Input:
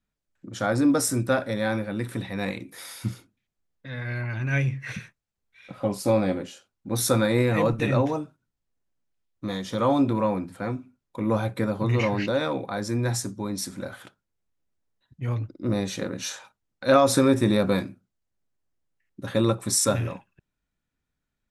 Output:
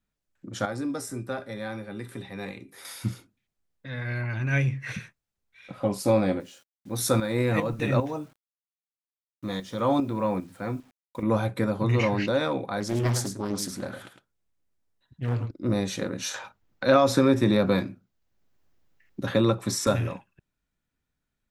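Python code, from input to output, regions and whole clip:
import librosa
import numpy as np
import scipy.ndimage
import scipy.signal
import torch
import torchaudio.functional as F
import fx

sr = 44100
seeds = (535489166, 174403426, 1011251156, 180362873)

y = fx.chain(x, sr, fx.comb_fb(f0_hz=400.0, decay_s=0.18, harmonics='all', damping=0.0, mix_pct=70),
    fx.band_squash(depth_pct=40), at=(0.65, 2.85))
y = fx.chain(y, sr, fx.tremolo_shape(shape='saw_up', hz=2.5, depth_pct=65),
    fx.quant_dither(seeds[0], bits=10, dither='none'), at=(6.4, 11.23))
y = fx.chain(y, sr, fx.echo_single(ms=107, db=-8.5),
    fx.doppler_dist(depth_ms=0.69), at=(12.8, 15.51))
y = fx.chain(y, sr, fx.peak_eq(hz=9300.0, db=-10.5, octaves=0.61),
    fx.band_squash(depth_pct=40), at=(16.34, 19.87))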